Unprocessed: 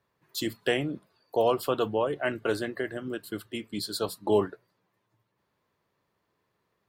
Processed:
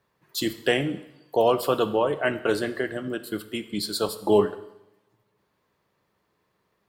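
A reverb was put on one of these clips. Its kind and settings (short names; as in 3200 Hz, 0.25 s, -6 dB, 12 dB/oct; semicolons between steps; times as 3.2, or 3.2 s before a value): two-slope reverb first 0.83 s, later 2.1 s, from -26 dB, DRR 11 dB; gain +4 dB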